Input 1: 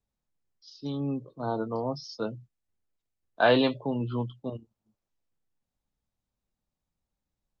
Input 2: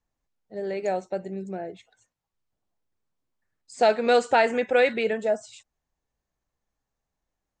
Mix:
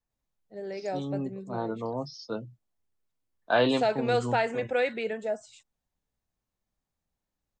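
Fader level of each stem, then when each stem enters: −2.0, −6.5 decibels; 0.10, 0.00 seconds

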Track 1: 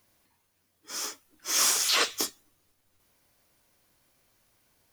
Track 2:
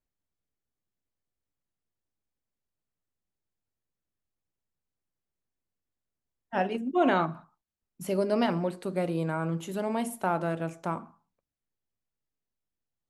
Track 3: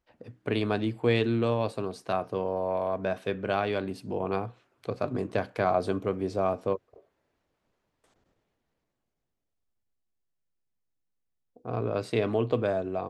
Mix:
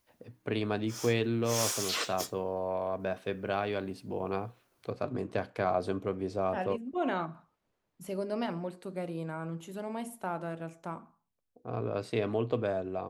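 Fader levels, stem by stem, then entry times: −8.5, −7.5, −4.0 decibels; 0.00, 0.00, 0.00 seconds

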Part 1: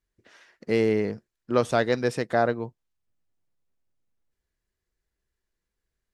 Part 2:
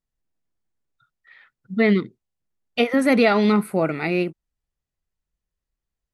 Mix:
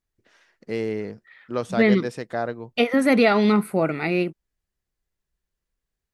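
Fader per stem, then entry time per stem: −4.5, −0.5 decibels; 0.00, 0.00 seconds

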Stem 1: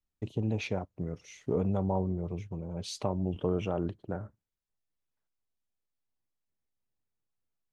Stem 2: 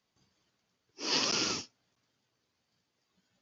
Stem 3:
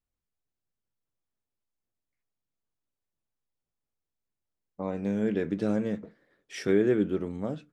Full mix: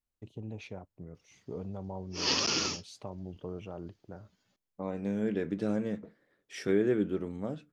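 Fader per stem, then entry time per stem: −10.5, +1.0, −3.5 decibels; 0.00, 1.15, 0.00 seconds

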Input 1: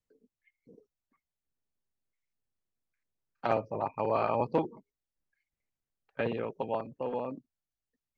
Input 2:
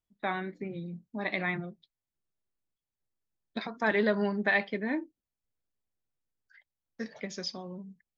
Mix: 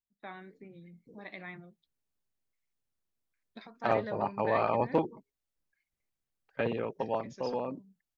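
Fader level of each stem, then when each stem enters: +0.5, −13.0 decibels; 0.40, 0.00 seconds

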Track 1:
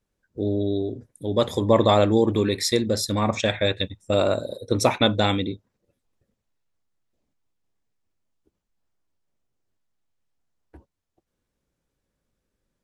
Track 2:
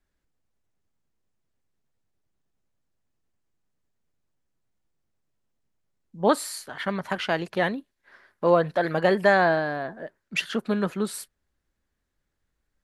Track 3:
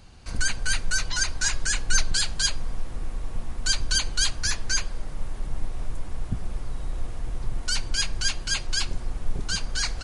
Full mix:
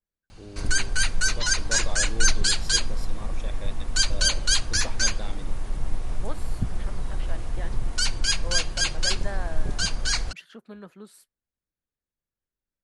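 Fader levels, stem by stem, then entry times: −19.5, −17.5, +2.0 decibels; 0.00, 0.00, 0.30 seconds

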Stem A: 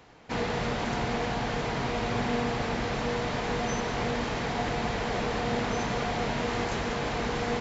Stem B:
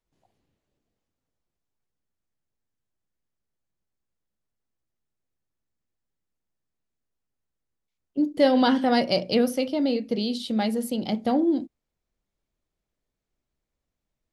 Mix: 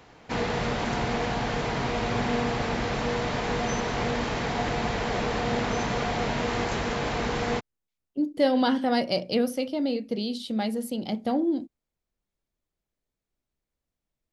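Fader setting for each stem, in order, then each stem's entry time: +2.0, −3.0 decibels; 0.00, 0.00 seconds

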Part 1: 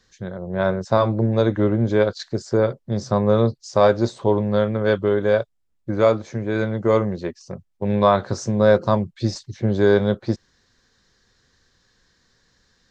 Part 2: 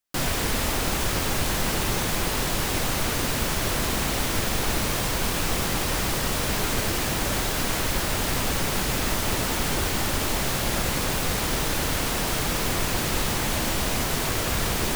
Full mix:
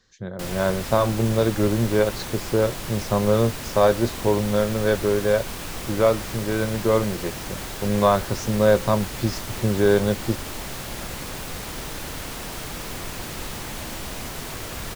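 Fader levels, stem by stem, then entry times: −2.0, −7.5 decibels; 0.00, 0.25 seconds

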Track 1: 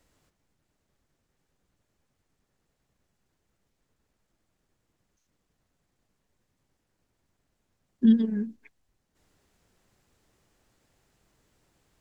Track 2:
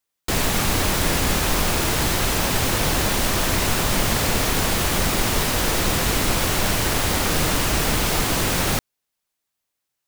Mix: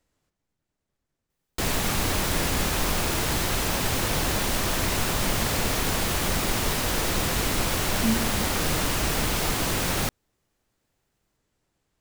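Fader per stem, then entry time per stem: −6.5, −4.5 decibels; 0.00, 1.30 seconds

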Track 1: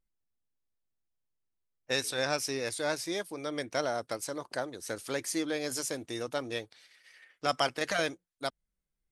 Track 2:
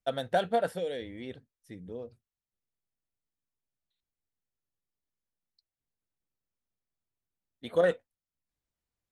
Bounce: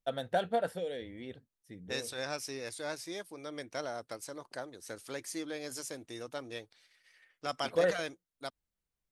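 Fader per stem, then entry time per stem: −7.0, −3.5 decibels; 0.00, 0.00 seconds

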